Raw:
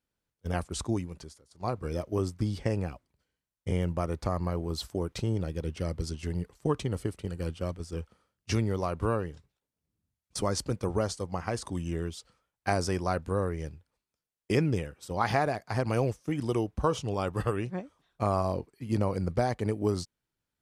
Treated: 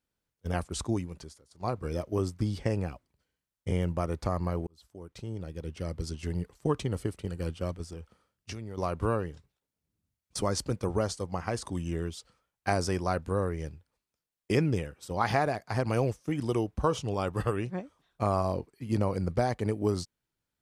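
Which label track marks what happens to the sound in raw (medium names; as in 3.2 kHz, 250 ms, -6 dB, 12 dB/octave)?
4.670000	6.310000	fade in
7.840000	8.780000	compression, threshold -36 dBFS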